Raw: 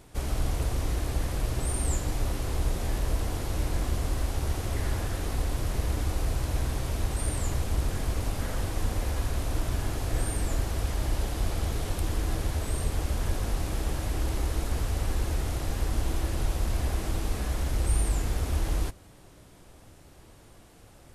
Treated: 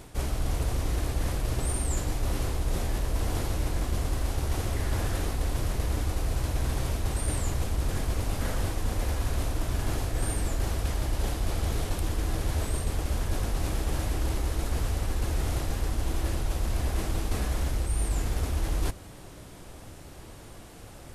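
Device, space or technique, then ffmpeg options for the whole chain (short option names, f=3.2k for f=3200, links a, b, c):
compression on the reversed sound: -af "areverse,acompressor=threshold=-31dB:ratio=6,areverse,volume=7dB"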